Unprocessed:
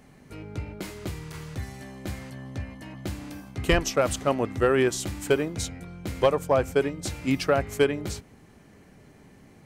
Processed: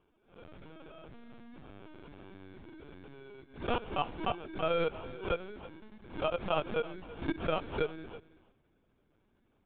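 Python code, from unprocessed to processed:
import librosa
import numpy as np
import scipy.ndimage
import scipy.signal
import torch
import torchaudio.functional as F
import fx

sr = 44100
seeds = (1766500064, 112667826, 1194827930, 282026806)

p1 = fx.pitch_glide(x, sr, semitones=8.5, runs='ending unshifted')
p2 = fx.noise_reduce_blind(p1, sr, reduce_db=6)
p3 = scipy.signal.sosfilt(scipy.signal.butter(2, 190.0, 'highpass', fs=sr, output='sos'), p2)
p4 = fx.low_shelf(p3, sr, hz=400.0, db=5.0)
p5 = fx.level_steps(p4, sr, step_db=22)
p6 = fx.transient(p5, sr, attack_db=1, sustain_db=7)
p7 = fx.sample_hold(p6, sr, seeds[0], rate_hz=1900.0, jitter_pct=0)
p8 = fx.vibrato(p7, sr, rate_hz=1.4, depth_cents=24.0)
p9 = fx.lpc_vocoder(p8, sr, seeds[1], excitation='pitch_kept', order=16)
p10 = p9 + fx.echo_single(p9, sr, ms=327, db=-18.0, dry=0)
p11 = fx.pre_swell(p10, sr, db_per_s=140.0)
y = p11 * librosa.db_to_amplitude(-7.0)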